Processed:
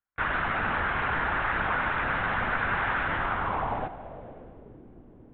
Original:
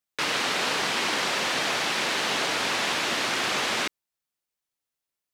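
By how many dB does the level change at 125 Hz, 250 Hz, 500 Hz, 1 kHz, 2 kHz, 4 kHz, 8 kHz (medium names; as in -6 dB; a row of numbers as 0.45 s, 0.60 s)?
+8.5 dB, -2.0 dB, -3.5 dB, +2.0 dB, -0.5 dB, -17.5 dB, under -40 dB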